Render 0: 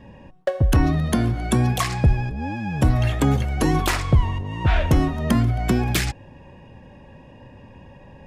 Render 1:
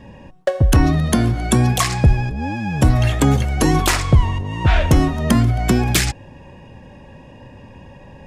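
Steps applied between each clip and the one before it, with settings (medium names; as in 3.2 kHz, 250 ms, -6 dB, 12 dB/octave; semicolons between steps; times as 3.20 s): peaking EQ 7.5 kHz +5 dB 1.5 oct; trim +4 dB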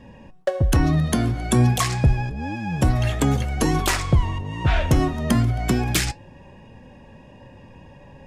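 flange 0.29 Hz, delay 3.9 ms, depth 4.6 ms, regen +79%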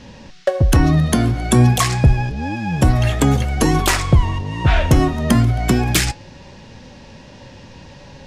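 band noise 1.3–5.8 kHz -56 dBFS; trim +5 dB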